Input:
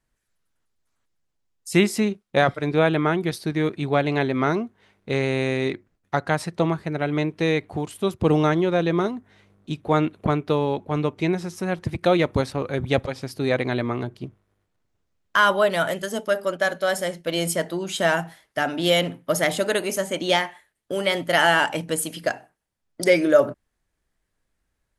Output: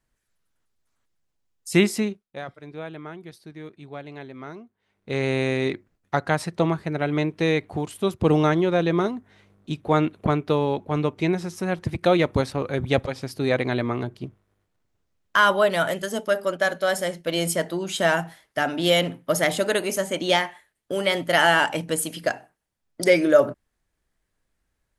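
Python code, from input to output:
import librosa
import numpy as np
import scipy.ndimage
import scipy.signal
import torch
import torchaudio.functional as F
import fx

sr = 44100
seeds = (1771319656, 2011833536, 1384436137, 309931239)

y = fx.edit(x, sr, fx.fade_down_up(start_s=1.89, length_s=3.4, db=-16.5, fade_s=0.44), tone=tone)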